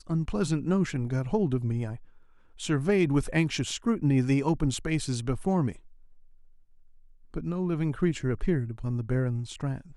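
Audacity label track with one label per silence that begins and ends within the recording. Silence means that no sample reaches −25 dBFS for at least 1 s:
5.700000	7.360000	silence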